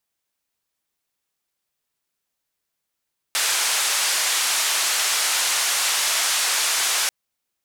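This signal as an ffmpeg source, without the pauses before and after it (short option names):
-f lavfi -i "anoisesrc=c=white:d=3.74:r=44100:seed=1,highpass=f=840,lowpass=f=9100,volume=-12.5dB"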